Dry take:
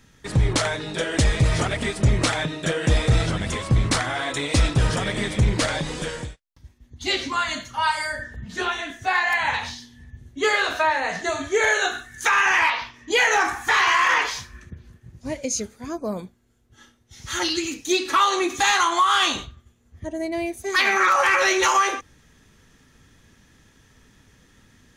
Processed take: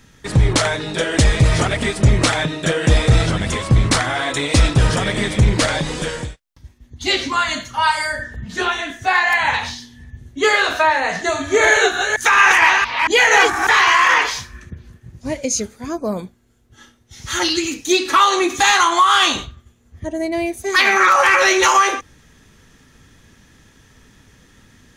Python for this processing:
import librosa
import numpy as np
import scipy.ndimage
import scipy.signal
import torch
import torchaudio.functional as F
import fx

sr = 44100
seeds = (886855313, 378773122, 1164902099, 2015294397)

y = fx.reverse_delay(x, sr, ms=228, wet_db=-3, at=(11.25, 13.67))
y = F.gain(torch.from_numpy(y), 5.5).numpy()